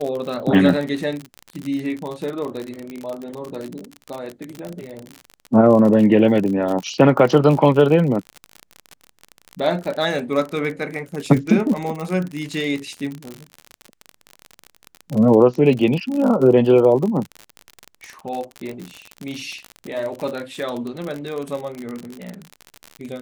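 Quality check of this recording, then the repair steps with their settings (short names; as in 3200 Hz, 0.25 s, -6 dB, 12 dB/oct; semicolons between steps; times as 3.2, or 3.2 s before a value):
crackle 50/s -24 dBFS
2.9 pop -21 dBFS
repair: de-click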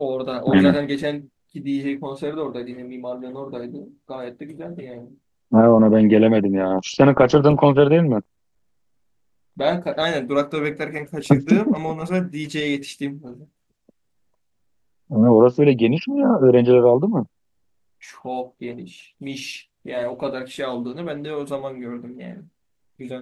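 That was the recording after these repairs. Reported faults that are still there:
none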